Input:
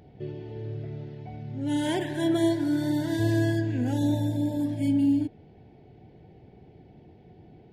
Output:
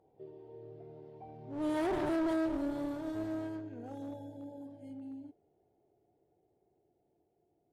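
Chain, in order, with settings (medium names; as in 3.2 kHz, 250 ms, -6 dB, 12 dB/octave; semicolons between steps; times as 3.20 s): Doppler pass-by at 2.09 s, 14 m/s, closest 2.9 m; high-order bell 630 Hz +13.5 dB 2.3 oct; peak limiter -15.5 dBFS, peak gain reduction 9 dB; one-sided clip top -35 dBFS, bottom -19.5 dBFS; trim -5 dB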